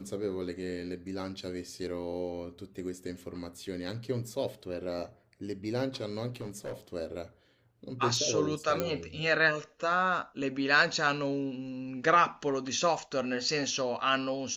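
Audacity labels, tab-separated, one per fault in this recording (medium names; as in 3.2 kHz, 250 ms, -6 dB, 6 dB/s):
6.360000	6.730000	clipped -33.5 dBFS
8.800000	8.800000	pop -15 dBFS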